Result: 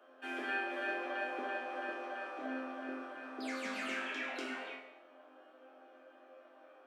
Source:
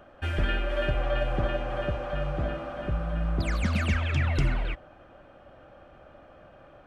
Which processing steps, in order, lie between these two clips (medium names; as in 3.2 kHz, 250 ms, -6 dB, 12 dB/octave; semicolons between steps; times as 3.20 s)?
steep high-pass 240 Hz 72 dB/octave; chord resonator F2 minor, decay 0.77 s; trim +10.5 dB